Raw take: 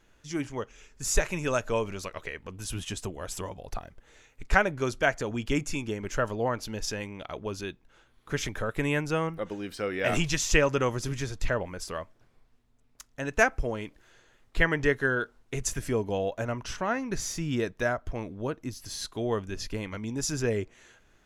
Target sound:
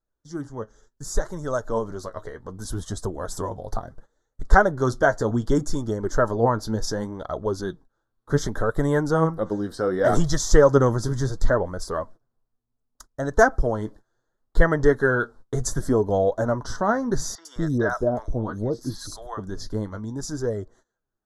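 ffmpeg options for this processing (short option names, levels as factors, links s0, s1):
-filter_complex "[0:a]agate=range=0.0794:threshold=0.00316:ratio=16:detection=peak,flanger=delay=1.5:depth=8:regen=52:speed=0.68:shape=sinusoidal,asuperstop=centerf=2500:order=4:qfactor=0.95,equalizer=f=6600:w=0.66:g=-5.5,asettb=1/sr,asplit=3[s0][s1][s2];[s0]atrim=end=17.354[s3];[s1]atrim=start=17.35:end=19.4,asetpts=PTS-STARTPTS,afade=t=in:d=0.004:c=qsin,afade=t=out:st=2.046:d=0.004:c=qsin,acrossover=split=750|4500[s4][s5][s6];[s6]adelay=100[s7];[s4]adelay=210[s8];[s8][s5][s7]amix=inputs=3:normalize=0,atrim=end_sample=90405[s9];[s2]atrim=start=19.396[s10];[s3][s9]acrossfade=d=0.004:c1=hsin:c2=qsin[s11];[s11][s10]acrossfade=d=0.004:c1=qsin:c2=hsin,dynaudnorm=f=520:g=9:m=2.51,lowpass=10000,volume=1.68"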